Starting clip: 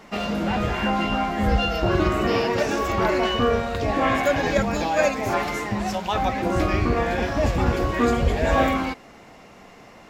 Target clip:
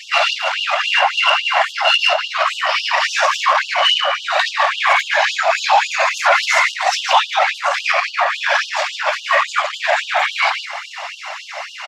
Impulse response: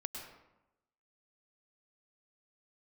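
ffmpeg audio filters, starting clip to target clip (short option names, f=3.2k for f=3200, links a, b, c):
-filter_complex "[0:a]lowpass=5.1k,highshelf=f=2.1k:g=4.5,asplit=2[a][b];[b]adelay=128.3,volume=-9dB,highshelf=f=4k:g=-2.89[c];[a][c]amix=inputs=2:normalize=0,atempo=0.85,flanger=delay=4.2:depth=4.5:regen=81:speed=0.31:shape=sinusoidal,afftfilt=real='hypot(re,im)*cos(2*PI*random(0))':imag='hypot(re,im)*sin(2*PI*random(1))':win_size=512:overlap=0.75,acompressor=threshold=-33dB:ratio=20,adynamicequalizer=threshold=0.00224:dfrequency=300:dqfactor=1.3:tfrequency=300:tqfactor=1.3:attack=5:release=100:ratio=0.375:range=2:mode=boostabove:tftype=bell,asoftclip=type=tanh:threshold=-29.5dB,alimiter=level_in=33.5dB:limit=-1dB:release=50:level=0:latency=1,afftfilt=real='re*gte(b*sr/1024,540*pow(2800/540,0.5+0.5*sin(2*PI*3.6*pts/sr)))':imag='im*gte(b*sr/1024,540*pow(2800/540,0.5+0.5*sin(2*PI*3.6*pts/sr)))':win_size=1024:overlap=0.75,volume=-2dB"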